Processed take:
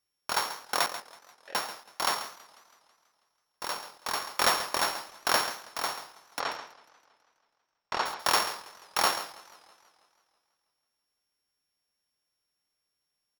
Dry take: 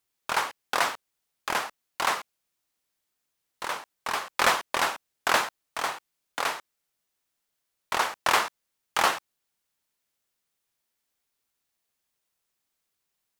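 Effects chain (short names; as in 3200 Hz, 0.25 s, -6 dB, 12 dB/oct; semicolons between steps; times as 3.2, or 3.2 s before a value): sample sorter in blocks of 8 samples; 0.86–1.55 vowel filter e; 6.4–8.06 air absorption 120 m; on a send: echo 0.137 s -12 dB; on the sum: warbling echo 0.163 s, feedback 61%, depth 184 cents, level -21 dB; gain -2.5 dB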